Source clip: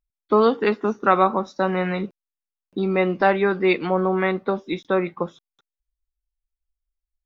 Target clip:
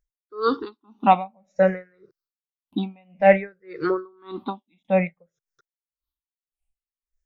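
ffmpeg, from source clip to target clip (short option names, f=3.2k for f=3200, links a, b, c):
-af "afftfilt=real='re*pow(10,23/40*sin(2*PI*(0.54*log(max(b,1)*sr/1024/100)/log(2)-(-0.56)*(pts-256)/sr)))':imag='im*pow(10,23/40*sin(2*PI*(0.54*log(max(b,1)*sr/1024/100)/log(2)-(-0.56)*(pts-256)/sr)))':win_size=1024:overlap=0.75,aeval=exprs='val(0)*pow(10,-39*(0.5-0.5*cos(2*PI*1.8*n/s))/20)':c=same,volume=-2dB"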